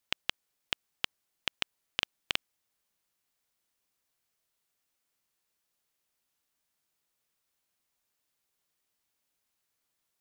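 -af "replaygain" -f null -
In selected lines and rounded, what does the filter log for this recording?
track_gain = +62.2 dB
track_peak = 0.295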